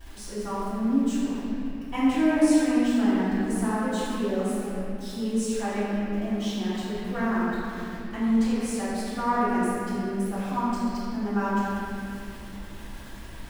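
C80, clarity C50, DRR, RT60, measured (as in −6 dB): −2.5 dB, −4.5 dB, −15.0 dB, 2.9 s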